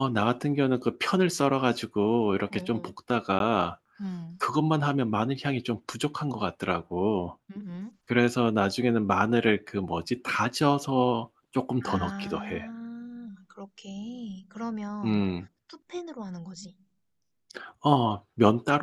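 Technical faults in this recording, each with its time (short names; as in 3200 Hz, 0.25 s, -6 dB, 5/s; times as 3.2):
3.39–3.4 gap 12 ms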